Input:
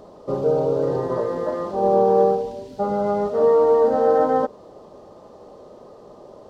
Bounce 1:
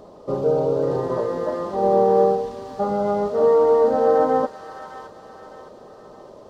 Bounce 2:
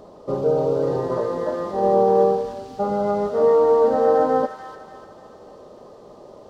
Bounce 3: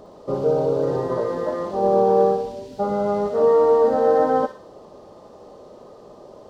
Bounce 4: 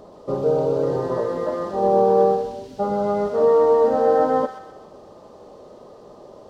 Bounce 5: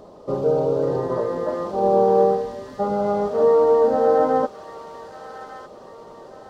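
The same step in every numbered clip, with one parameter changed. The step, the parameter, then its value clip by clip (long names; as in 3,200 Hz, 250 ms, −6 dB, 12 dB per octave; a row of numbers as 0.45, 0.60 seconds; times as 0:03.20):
delay with a high-pass on its return, delay time: 611, 294, 60, 126, 1,200 milliseconds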